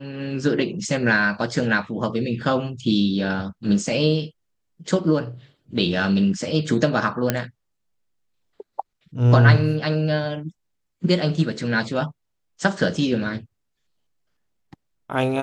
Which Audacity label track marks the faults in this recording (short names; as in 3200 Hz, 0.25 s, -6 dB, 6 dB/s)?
7.300000	7.300000	pop -4 dBFS